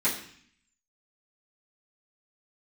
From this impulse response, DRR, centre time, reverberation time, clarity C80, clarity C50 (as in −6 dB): −12.0 dB, 27 ms, 0.55 s, 11.0 dB, 7.5 dB